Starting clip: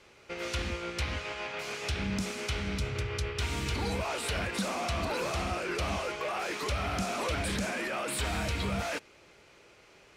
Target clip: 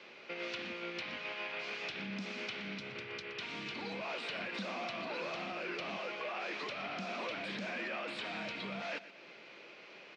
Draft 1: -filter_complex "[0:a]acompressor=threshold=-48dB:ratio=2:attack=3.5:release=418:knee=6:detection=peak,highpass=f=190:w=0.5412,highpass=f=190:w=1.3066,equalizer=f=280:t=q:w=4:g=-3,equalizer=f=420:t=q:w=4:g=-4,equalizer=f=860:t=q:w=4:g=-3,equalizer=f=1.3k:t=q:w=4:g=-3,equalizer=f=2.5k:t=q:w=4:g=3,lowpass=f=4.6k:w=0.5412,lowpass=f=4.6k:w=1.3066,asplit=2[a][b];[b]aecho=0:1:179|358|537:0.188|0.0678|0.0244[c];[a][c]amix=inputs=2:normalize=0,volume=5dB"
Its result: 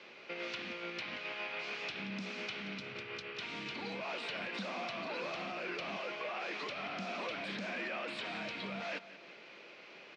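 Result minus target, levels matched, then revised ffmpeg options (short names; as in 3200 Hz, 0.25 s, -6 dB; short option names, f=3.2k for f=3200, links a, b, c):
echo 58 ms late
-filter_complex "[0:a]acompressor=threshold=-48dB:ratio=2:attack=3.5:release=418:knee=6:detection=peak,highpass=f=190:w=0.5412,highpass=f=190:w=1.3066,equalizer=f=280:t=q:w=4:g=-3,equalizer=f=420:t=q:w=4:g=-4,equalizer=f=860:t=q:w=4:g=-3,equalizer=f=1.3k:t=q:w=4:g=-3,equalizer=f=2.5k:t=q:w=4:g=3,lowpass=f=4.6k:w=0.5412,lowpass=f=4.6k:w=1.3066,asplit=2[a][b];[b]aecho=0:1:121|242|363:0.188|0.0678|0.0244[c];[a][c]amix=inputs=2:normalize=0,volume=5dB"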